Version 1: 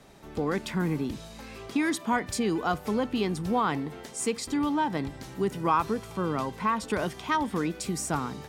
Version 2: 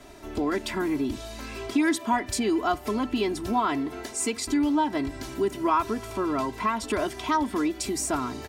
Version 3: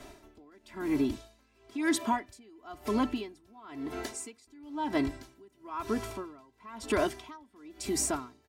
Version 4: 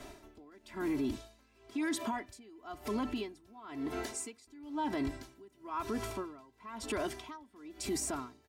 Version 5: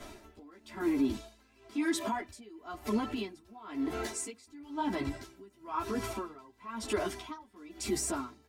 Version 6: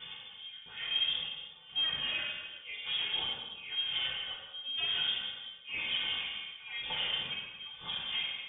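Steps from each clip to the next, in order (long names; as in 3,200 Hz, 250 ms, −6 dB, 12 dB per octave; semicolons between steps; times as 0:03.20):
comb filter 3 ms, depth 91%; in parallel at +2 dB: downward compressor, threshold −32 dBFS, peak gain reduction 14 dB; on the sum: level −3.5 dB
tremolo with a sine in dB 1 Hz, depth 31 dB
brickwall limiter −27 dBFS, peak gain reduction 10.5 dB
string-ensemble chorus; level +5.5 dB
hard clipping −33.5 dBFS, distortion −7 dB; convolution reverb, pre-delay 3 ms, DRR −4.5 dB; voice inversion scrambler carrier 3,500 Hz; level −3 dB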